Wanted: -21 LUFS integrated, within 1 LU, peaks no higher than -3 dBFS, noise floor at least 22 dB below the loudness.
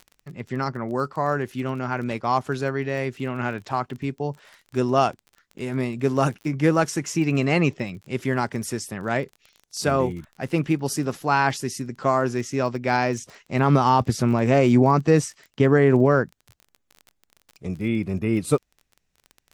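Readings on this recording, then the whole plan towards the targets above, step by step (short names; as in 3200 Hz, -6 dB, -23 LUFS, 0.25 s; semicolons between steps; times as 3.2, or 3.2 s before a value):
ticks 25/s; loudness -23.0 LUFS; peak -6.5 dBFS; loudness target -21.0 LUFS
-> de-click; gain +2 dB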